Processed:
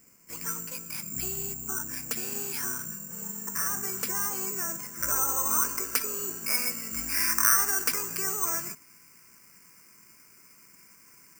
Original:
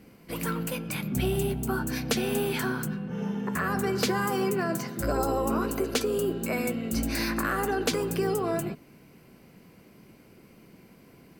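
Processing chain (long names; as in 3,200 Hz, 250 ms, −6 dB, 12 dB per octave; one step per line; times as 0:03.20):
flat-topped bell 1,600 Hz +8 dB, from 0:04.93 +16 dB
bad sample-rate conversion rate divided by 6×, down filtered, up zero stuff
level −14.5 dB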